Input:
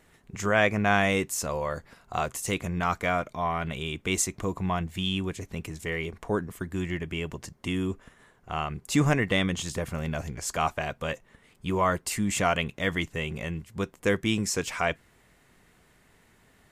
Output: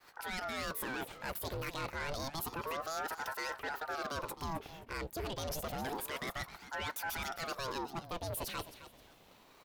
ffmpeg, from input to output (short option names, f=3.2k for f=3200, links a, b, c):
-af "agate=range=-33dB:threshold=-56dB:ratio=3:detection=peak,equalizer=f=230:w=1.9:g=4.5,areverse,acompressor=threshold=-33dB:ratio=12,areverse,asoftclip=type=tanh:threshold=-37dB,aecho=1:1:455|910|1365:0.2|0.0499|0.0125,asetrate=76440,aresample=44100,aeval=exprs='val(0)*sin(2*PI*690*n/s+690*0.75/0.29*sin(2*PI*0.29*n/s))':c=same,volume=5dB"